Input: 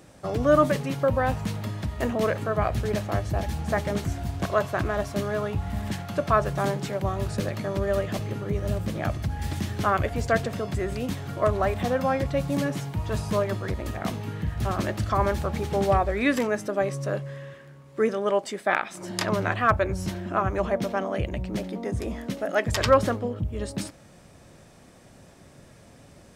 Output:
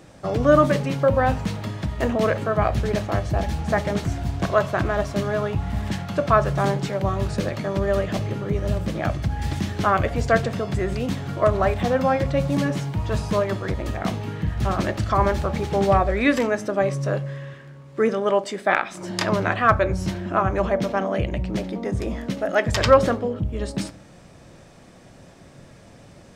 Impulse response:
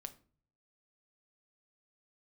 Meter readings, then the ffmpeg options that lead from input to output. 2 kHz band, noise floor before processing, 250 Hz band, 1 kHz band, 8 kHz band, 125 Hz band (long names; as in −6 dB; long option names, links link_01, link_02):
+3.5 dB, −51 dBFS, +4.0 dB, +4.0 dB, +1.0 dB, +4.0 dB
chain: -filter_complex "[0:a]asplit=2[link_01][link_02];[1:a]atrim=start_sample=2205,lowpass=8500[link_03];[link_02][link_03]afir=irnorm=-1:irlink=0,volume=5.5dB[link_04];[link_01][link_04]amix=inputs=2:normalize=0,volume=-2.5dB"